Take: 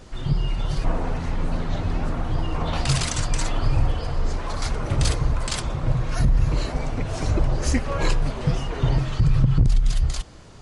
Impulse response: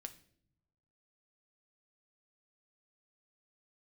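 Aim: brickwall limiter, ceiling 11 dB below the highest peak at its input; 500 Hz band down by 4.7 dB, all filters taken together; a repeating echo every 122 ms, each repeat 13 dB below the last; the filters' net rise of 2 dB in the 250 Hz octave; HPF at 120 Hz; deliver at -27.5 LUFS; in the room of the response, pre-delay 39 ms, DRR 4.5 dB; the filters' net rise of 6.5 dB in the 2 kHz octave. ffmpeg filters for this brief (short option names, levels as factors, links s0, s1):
-filter_complex "[0:a]highpass=120,equalizer=f=250:t=o:g=6,equalizer=f=500:t=o:g=-8.5,equalizer=f=2000:t=o:g=8.5,alimiter=limit=0.133:level=0:latency=1,aecho=1:1:122|244|366:0.224|0.0493|0.0108,asplit=2[s0][s1];[1:a]atrim=start_sample=2205,adelay=39[s2];[s1][s2]afir=irnorm=-1:irlink=0,volume=1.06[s3];[s0][s3]amix=inputs=2:normalize=0,volume=0.944"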